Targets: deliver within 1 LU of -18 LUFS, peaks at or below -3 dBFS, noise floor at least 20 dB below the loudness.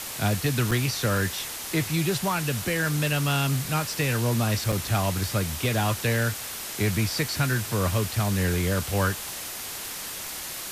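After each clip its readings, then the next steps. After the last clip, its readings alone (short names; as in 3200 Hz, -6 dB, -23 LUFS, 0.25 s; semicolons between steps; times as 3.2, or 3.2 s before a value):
dropouts 2; longest dropout 5.5 ms; noise floor -36 dBFS; noise floor target -46 dBFS; loudness -26.0 LUFS; peak -13.0 dBFS; loudness target -18.0 LUFS
-> interpolate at 0.71/4.72, 5.5 ms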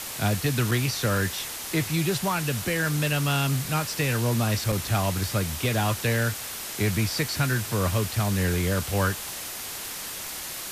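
dropouts 0; noise floor -36 dBFS; noise floor target -46 dBFS
-> noise print and reduce 10 dB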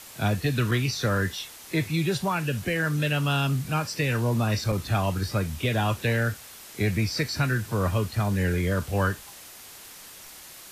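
noise floor -46 dBFS; noise floor target -47 dBFS
-> noise print and reduce 6 dB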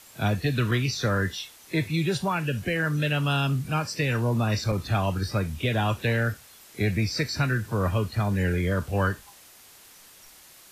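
noise floor -51 dBFS; loudness -26.5 LUFS; peak -13.5 dBFS; loudness target -18.0 LUFS
-> gain +8.5 dB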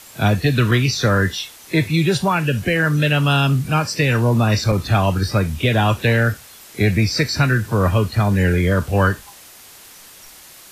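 loudness -18.0 LUFS; peak -5.0 dBFS; noise floor -43 dBFS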